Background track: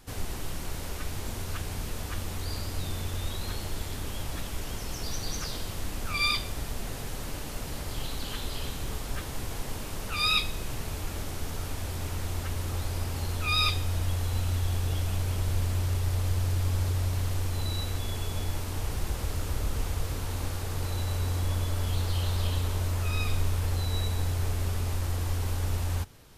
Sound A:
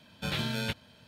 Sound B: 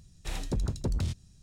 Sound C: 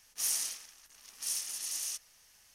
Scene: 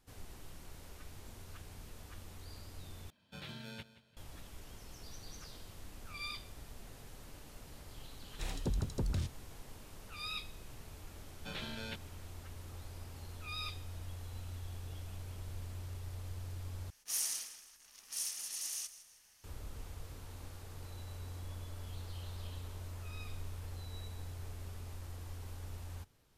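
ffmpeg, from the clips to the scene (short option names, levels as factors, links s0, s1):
-filter_complex "[1:a]asplit=2[s0][s1];[0:a]volume=0.15[s2];[s0]aecho=1:1:174|348|522:0.168|0.0487|0.0141[s3];[s1]highpass=190,lowpass=6700[s4];[3:a]aecho=1:1:158|316|474|632:0.178|0.0711|0.0285|0.0114[s5];[s2]asplit=3[s6][s7][s8];[s6]atrim=end=3.104[s9];[s3]atrim=end=1.07,asetpts=PTS-STARTPTS,volume=0.168[s10];[s7]atrim=start=4.166:end=16.904[s11];[s5]atrim=end=2.54,asetpts=PTS-STARTPTS,volume=0.631[s12];[s8]atrim=start=19.436[s13];[2:a]atrim=end=1.42,asetpts=PTS-STARTPTS,volume=0.562,afade=t=in:d=0.004:c=hsin,afade=t=out:st=1.416:d=0.004:c=hsin,adelay=8140[s14];[s4]atrim=end=1.07,asetpts=PTS-STARTPTS,volume=0.316,afade=t=in:d=0.004:c=hsin,afade=t=out:st=1.066:d=0.004:c=hsin,adelay=11230[s15];[s9][s10]acrossfade=d=0.004:c1=hsin:c2=hsin[s16];[s16][s11]acrossfade=d=0.004:c1=hsin:c2=hsin[s17];[s17][s12]acrossfade=d=0.004:c1=hsin:c2=hsin[s18];[s18][s13]acrossfade=d=0.004:c1=hsin:c2=hsin[s19];[s19][s14][s15]amix=inputs=3:normalize=0"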